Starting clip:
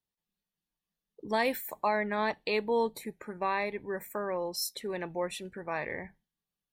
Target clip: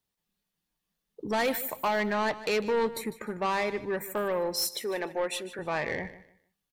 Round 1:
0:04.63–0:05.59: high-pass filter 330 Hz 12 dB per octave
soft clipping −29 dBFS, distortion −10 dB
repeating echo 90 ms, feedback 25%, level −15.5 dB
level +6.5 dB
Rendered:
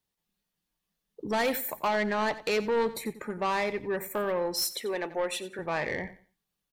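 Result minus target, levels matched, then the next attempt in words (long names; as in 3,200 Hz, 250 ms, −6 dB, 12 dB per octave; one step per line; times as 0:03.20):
echo 61 ms early
0:04.63–0:05.59: high-pass filter 330 Hz 12 dB per octave
soft clipping −29 dBFS, distortion −10 dB
repeating echo 151 ms, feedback 25%, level −15.5 dB
level +6.5 dB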